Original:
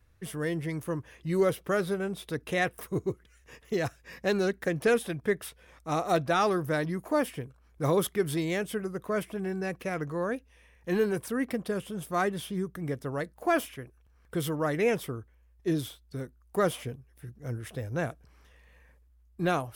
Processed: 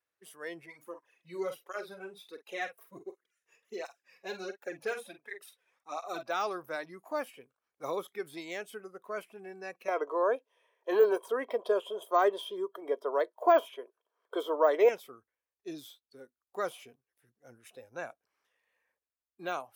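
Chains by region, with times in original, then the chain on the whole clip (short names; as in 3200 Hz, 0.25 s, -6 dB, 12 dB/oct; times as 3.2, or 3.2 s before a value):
0.66–6.23 doubler 47 ms -9.5 dB + tape flanging out of phase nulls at 1.4 Hz, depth 4.1 ms
9.88–14.89 HPF 320 Hz + small resonant body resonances 430/610/960/3200 Hz, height 15 dB, ringing for 20 ms
whole clip: de-esser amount 85%; HPF 490 Hz 12 dB/oct; spectral noise reduction 10 dB; gain -5 dB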